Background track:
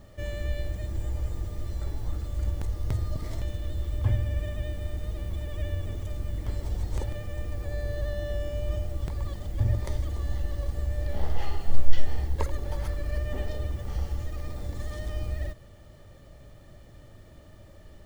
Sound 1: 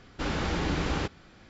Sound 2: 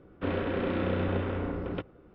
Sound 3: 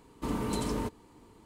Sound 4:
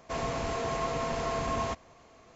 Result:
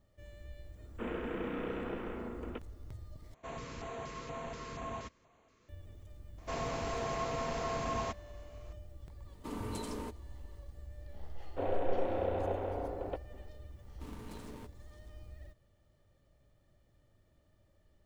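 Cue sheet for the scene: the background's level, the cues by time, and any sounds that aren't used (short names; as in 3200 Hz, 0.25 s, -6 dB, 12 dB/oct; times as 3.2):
background track -19 dB
0.77 add 2 -7 dB + mistuned SSB -50 Hz 250–3400 Hz
3.34 replace with 4 -10 dB + LFO notch square 2.1 Hz 740–5100 Hz
6.38 add 4 -4.5 dB
9.22 add 3 -7.5 dB, fades 0.10 s + HPF 200 Hz
11.35 add 2 -10 dB + EQ curve 100 Hz 0 dB, 180 Hz -8 dB, 750 Hz +15 dB, 1200 Hz -2 dB
13.78 add 3 -16 dB + switching dead time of 0.25 ms
not used: 1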